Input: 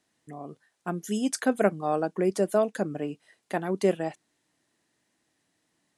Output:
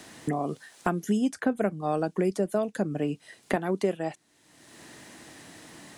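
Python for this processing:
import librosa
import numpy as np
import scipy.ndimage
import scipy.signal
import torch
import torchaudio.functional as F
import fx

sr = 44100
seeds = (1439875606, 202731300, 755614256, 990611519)

y = fx.low_shelf(x, sr, hz=190.0, db=10.5, at=(1.02, 3.56))
y = fx.band_squash(y, sr, depth_pct=100)
y = y * 10.0 ** (-3.0 / 20.0)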